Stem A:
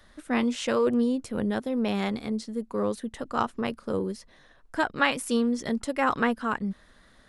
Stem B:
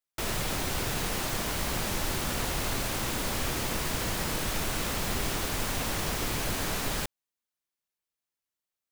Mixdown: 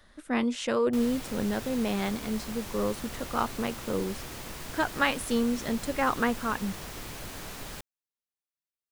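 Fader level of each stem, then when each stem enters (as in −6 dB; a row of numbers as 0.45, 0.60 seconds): −2.0, −9.5 decibels; 0.00, 0.75 seconds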